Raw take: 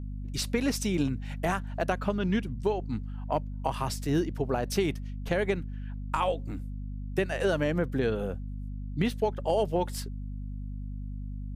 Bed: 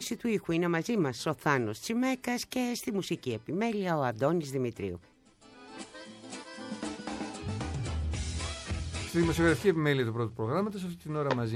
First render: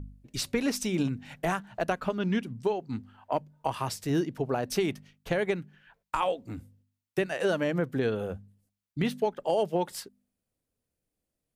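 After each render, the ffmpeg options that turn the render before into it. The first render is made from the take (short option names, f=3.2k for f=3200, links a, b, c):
-af "bandreject=f=50:t=h:w=4,bandreject=f=100:t=h:w=4,bandreject=f=150:t=h:w=4,bandreject=f=200:t=h:w=4,bandreject=f=250:t=h:w=4"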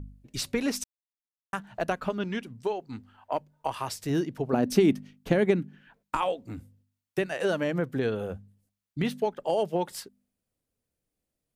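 -filter_complex "[0:a]asettb=1/sr,asplit=3[a][b][c];[a]atrim=end=2.244[d];[b]atrim=start=2.24:end=4.02,asetpts=PTS-STARTPTS,afade=t=in:d=0.004:c=qsin,afade=t=out:st=1.776:d=0.004:c=qsin,equalizer=f=160:w=0.8:g=-7[e];[c]atrim=start=4.016[f];[d][e]acrossfade=d=0.004:c1=hsin:c2=qsin[g];[g][f]acrossfade=d=0.004:c1=qsin:c2=hsin,asettb=1/sr,asplit=3[h][i][j];[h]atrim=end=4.534[k];[i]atrim=start=4.53:end=6.17,asetpts=PTS-STARTPTS,afade=t=in:d=0.004:c=qsin,afade=t=out:st=1.636:d=0.004:c=qsin,equalizer=f=250:t=o:w=1.1:g=13.5[l];[j]atrim=start=6.166[m];[k][l]acrossfade=d=0.004:c1=hsin:c2=qsin[n];[n][m]acrossfade=d=0.004:c1=qsin:c2=hsin,asplit=3[o][p][q];[o]atrim=end=0.84,asetpts=PTS-STARTPTS,afade=t=out:st=0.836:d=0.004:c=hsin[r];[p]atrim=start=0.84:end=1.53,asetpts=PTS-STARTPTS,volume=0[s];[q]atrim=start=1.53,asetpts=PTS-STARTPTS,afade=t=in:d=0.004:c=hsin[t];[r][s][t]concat=n=3:v=0:a=1"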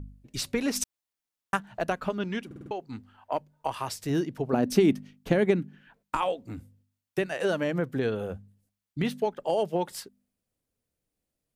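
-filter_complex "[0:a]asplit=3[a][b][c];[a]afade=t=out:st=0.75:d=0.02[d];[b]acontrast=51,afade=t=in:st=0.75:d=0.02,afade=t=out:st=1.56:d=0.02[e];[c]afade=t=in:st=1.56:d=0.02[f];[d][e][f]amix=inputs=3:normalize=0,asplit=6[g][h][i][j][k][l];[g]atrim=end=2.512[m];[h]atrim=start=2.458:end=2.512[n];[i]atrim=start=2.458:end=2.512[o];[j]atrim=start=2.458:end=2.512[p];[k]atrim=start=2.458:end=2.512[q];[l]atrim=start=2.708[r];[m][n]acrossfade=d=0.004:c1=hsin:c2=hsin[s];[s][o]acrossfade=d=0.004:c1=hsin:c2=hsin[t];[t][p]acrossfade=d=0.004:c1=hsin:c2=hsin[u];[u][q]acrossfade=d=0.004:c1=hsin:c2=hsin[v];[v][r]acrossfade=d=0.004:c1=hsin:c2=hsin"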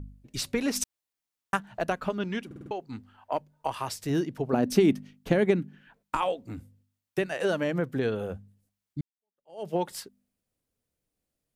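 -filter_complex "[0:a]asplit=2[a][b];[a]atrim=end=9.01,asetpts=PTS-STARTPTS,afade=t=out:st=9.006:d=0.004:c=hsin[c];[b]atrim=start=9.01,asetpts=PTS-STARTPTS,afade=t=in:d=0.67:c=exp[d];[c][d]concat=n=2:v=0:a=1"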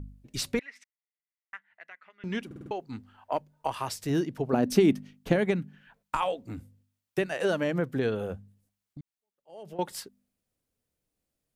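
-filter_complex "[0:a]asettb=1/sr,asplit=3[a][b][c];[a]atrim=end=0.594[d];[b]atrim=start=0.59:end=2.24,asetpts=PTS-STARTPTS,afade=t=in:d=0.004:c=qsin,afade=t=out:st=1.646:d=0.004:c=qsin,bandpass=f=2k:t=q:w=9.5[e];[c]atrim=start=2.236[f];[d][e]acrossfade=d=0.004:c1=hsin:c2=qsin[g];[g][f]acrossfade=d=0.004:c1=qsin:c2=hsin,asettb=1/sr,asplit=3[h][i][j];[h]atrim=end=5.364[k];[i]atrim=start=5.36:end=6.33,asetpts=PTS-STARTPTS,afade=t=in:d=0.004:c=qsin,afade=t=out:st=0.966:d=0.004:c=qsin,equalizer=f=320:t=o:w=0.77:g=-8[l];[j]atrim=start=6.326[m];[k][l]acrossfade=d=0.004:c1=hsin:c2=qsin[n];[n][m]acrossfade=d=0.004:c1=qsin:c2=hsin,asettb=1/sr,asplit=3[o][p][q];[o]atrim=end=8.354[r];[p]atrim=start=8.35:end=9.79,asetpts=PTS-STARTPTS,afade=t=in:d=0.004:c=qsin,afade=t=out:st=1.436:d=0.004:c=qsin,acompressor=threshold=-40dB:ratio=6:attack=3.2:release=140:knee=1:detection=peak[s];[q]atrim=start=9.786[t];[r][s]acrossfade=d=0.004:c1=hsin:c2=qsin[u];[u][t]acrossfade=d=0.004:c1=qsin:c2=hsin"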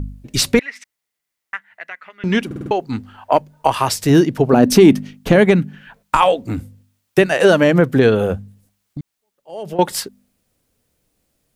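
-af "acontrast=83,alimiter=level_in=8.5dB:limit=-1dB:release=50:level=0:latency=1"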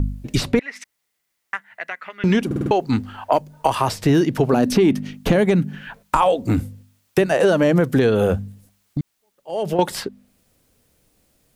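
-filter_complex "[0:a]acrossover=split=1200|4000[a][b][c];[a]acompressor=threshold=-18dB:ratio=4[d];[b]acompressor=threshold=-36dB:ratio=4[e];[c]acompressor=threshold=-42dB:ratio=4[f];[d][e][f]amix=inputs=3:normalize=0,asplit=2[g][h];[h]alimiter=limit=-16dB:level=0:latency=1:release=18,volume=-1dB[i];[g][i]amix=inputs=2:normalize=0"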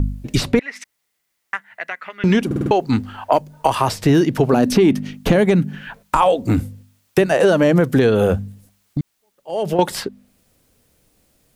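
-af "volume=2dB,alimiter=limit=-2dB:level=0:latency=1"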